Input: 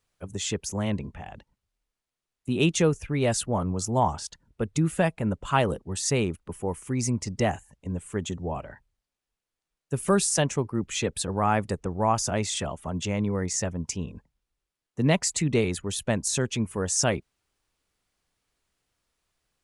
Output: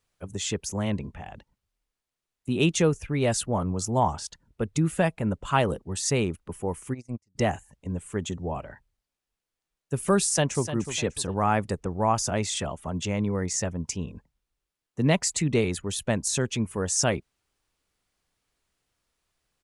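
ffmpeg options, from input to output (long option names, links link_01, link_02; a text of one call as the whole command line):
ffmpeg -i in.wav -filter_complex "[0:a]asplit=3[link_01][link_02][link_03];[link_01]afade=type=out:start_time=6.93:duration=0.02[link_04];[link_02]agate=range=-39dB:threshold=-24dB:ratio=16:release=100:detection=peak,afade=type=in:start_time=6.93:duration=0.02,afade=type=out:start_time=7.35:duration=0.02[link_05];[link_03]afade=type=in:start_time=7.35:duration=0.02[link_06];[link_04][link_05][link_06]amix=inputs=3:normalize=0,asplit=2[link_07][link_08];[link_08]afade=type=in:start_time=10.24:duration=0.01,afade=type=out:start_time=10.66:duration=0.01,aecho=0:1:300|600|900:0.281838|0.0845515|0.0253654[link_09];[link_07][link_09]amix=inputs=2:normalize=0" out.wav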